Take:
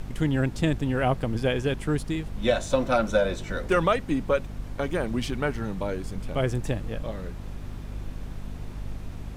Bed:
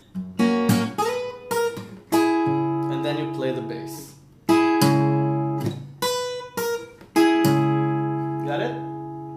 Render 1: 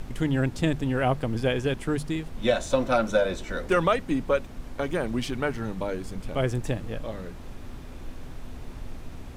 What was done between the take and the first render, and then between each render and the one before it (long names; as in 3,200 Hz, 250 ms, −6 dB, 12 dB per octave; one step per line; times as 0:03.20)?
mains-hum notches 50/100/150/200 Hz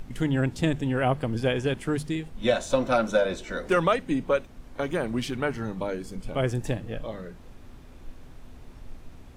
noise reduction from a noise print 7 dB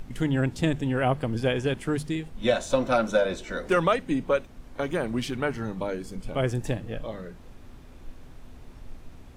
no processing that can be heard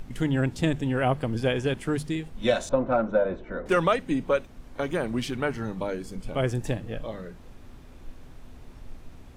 0:02.69–0:03.66: low-pass filter 1,300 Hz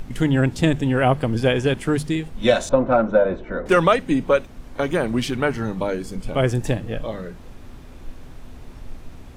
level +6.5 dB